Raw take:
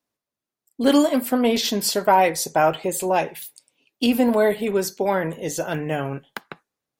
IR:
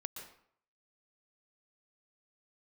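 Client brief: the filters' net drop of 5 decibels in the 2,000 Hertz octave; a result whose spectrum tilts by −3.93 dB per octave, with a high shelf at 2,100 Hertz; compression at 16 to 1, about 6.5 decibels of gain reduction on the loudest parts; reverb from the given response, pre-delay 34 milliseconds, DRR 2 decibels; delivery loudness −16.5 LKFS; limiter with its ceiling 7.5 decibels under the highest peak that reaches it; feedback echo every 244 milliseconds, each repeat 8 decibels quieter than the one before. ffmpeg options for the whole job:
-filter_complex "[0:a]equalizer=frequency=2000:width_type=o:gain=-9,highshelf=frequency=2100:gain=3.5,acompressor=threshold=-18dB:ratio=16,alimiter=limit=-16.5dB:level=0:latency=1,aecho=1:1:244|488|732|976|1220:0.398|0.159|0.0637|0.0255|0.0102,asplit=2[link_01][link_02];[1:a]atrim=start_sample=2205,adelay=34[link_03];[link_02][link_03]afir=irnorm=-1:irlink=0,volume=0dB[link_04];[link_01][link_04]amix=inputs=2:normalize=0,volume=7.5dB"

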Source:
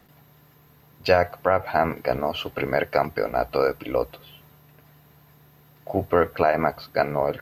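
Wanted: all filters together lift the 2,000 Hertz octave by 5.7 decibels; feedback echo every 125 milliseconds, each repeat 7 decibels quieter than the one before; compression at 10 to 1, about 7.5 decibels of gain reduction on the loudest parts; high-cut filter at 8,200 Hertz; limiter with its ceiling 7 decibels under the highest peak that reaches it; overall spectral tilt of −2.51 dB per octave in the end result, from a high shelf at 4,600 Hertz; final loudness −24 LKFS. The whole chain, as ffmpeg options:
ffmpeg -i in.wav -af "lowpass=8200,equalizer=frequency=2000:width_type=o:gain=6.5,highshelf=frequency=4600:gain=6.5,acompressor=threshold=-20dB:ratio=10,alimiter=limit=-14dB:level=0:latency=1,aecho=1:1:125|250|375|500|625:0.447|0.201|0.0905|0.0407|0.0183,volume=4.5dB" out.wav

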